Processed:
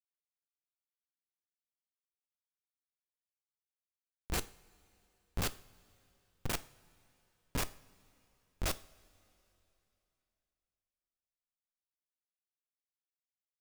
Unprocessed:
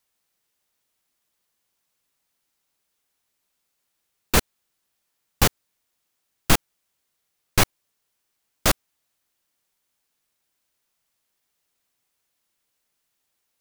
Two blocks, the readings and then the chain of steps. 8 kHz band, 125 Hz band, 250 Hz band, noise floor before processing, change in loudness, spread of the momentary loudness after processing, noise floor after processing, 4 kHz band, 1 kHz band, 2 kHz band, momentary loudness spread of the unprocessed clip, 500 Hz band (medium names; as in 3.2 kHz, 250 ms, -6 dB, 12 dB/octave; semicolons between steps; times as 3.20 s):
-16.0 dB, -14.5 dB, -16.0 dB, -77 dBFS, -16.5 dB, 8 LU, under -85 dBFS, -16.0 dB, -17.0 dB, -17.0 dB, 4 LU, -16.0 dB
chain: reverse echo 44 ms -23 dB; Schmitt trigger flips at -31.5 dBFS; two-slope reverb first 0.44 s, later 3.2 s, from -18 dB, DRR 13.5 dB; trim -1.5 dB